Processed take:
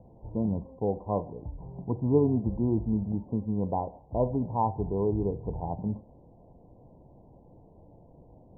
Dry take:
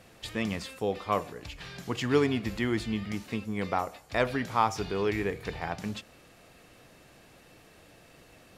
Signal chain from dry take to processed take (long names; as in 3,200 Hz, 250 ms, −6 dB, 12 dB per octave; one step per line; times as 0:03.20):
Chebyshev low-pass filter 1,000 Hz, order 8
low-shelf EQ 190 Hz +9 dB